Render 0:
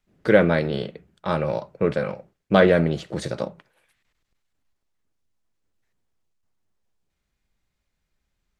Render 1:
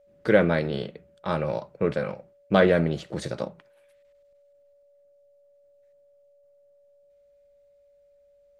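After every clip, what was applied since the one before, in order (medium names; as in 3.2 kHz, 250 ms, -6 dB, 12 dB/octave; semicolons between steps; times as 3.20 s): whistle 570 Hz -54 dBFS; trim -3 dB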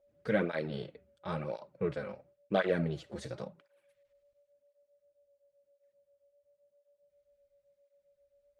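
cancelling through-zero flanger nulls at 0.95 Hz, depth 6.9 ms; trim -7 dB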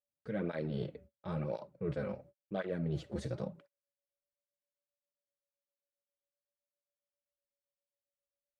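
bass shelf 480 Hz +10 dB; gate -54 dBFS, range -34 dB; reverse; compression 12:1, threshold -31 dBFS, peak gain reduction 14 dB; reverse; trim -1.5 dB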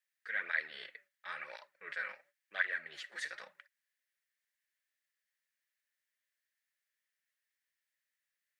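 resonant high-pass 1.8 kHz, resonance Q 6.5; trim +4.5 dB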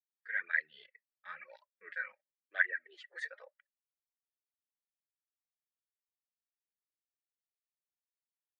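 reverb removal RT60 0.74 s; high-pass sweep 130 Hz -> 670 Hz, 0.84–4.00 s; spectral contrast expander 1.5:1; trim +3 dB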